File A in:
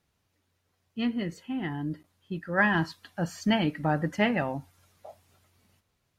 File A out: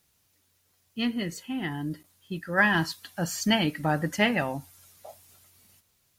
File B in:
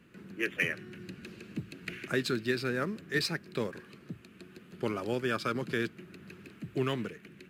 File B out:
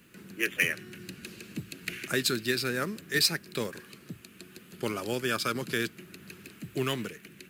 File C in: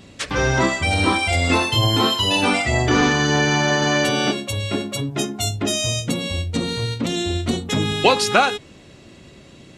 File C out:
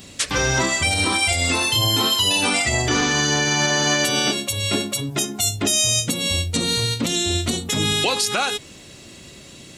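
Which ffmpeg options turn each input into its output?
ffmpeg -i in.wav -af "crystalizer=i=3.5:c=0,alimiter=limit=-9.5dB:level=0:latency=1:release=166" out.wav

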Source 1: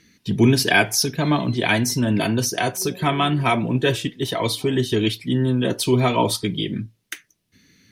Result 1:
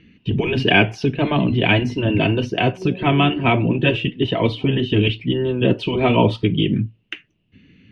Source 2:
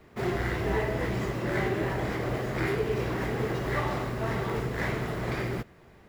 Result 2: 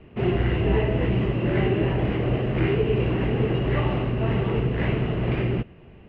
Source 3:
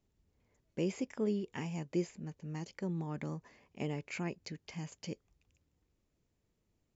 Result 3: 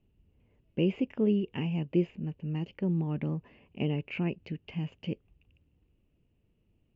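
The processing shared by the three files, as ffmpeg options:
ffmpeg -i in.wav -af "lowpass=frequency=2800:width_type=q:width=9.3,tiltshelf=frequency=840:gain=9.5,afftfilt=real='re*lt(hypot(re,im),1.78)':imag='im*lt(hypot(re,im),1.78)':win_size=1024:overlap=0.75" out.wav

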